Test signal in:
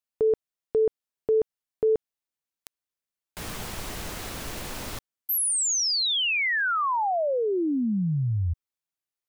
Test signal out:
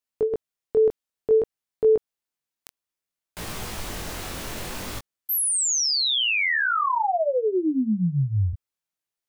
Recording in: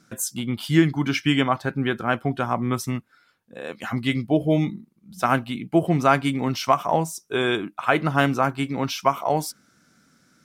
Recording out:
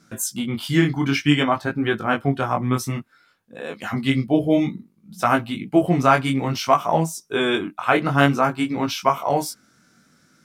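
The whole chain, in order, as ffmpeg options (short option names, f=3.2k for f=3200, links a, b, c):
-af "flanger=delay=18:depth=5.2:speed=0.57,volume=5dB"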